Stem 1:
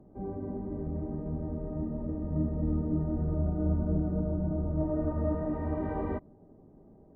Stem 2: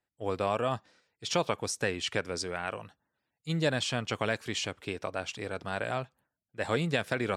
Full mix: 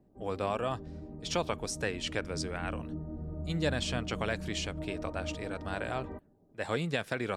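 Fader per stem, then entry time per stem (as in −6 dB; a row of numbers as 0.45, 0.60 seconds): −9.5, −3.0 decibels; 0.00, 0.00 seconds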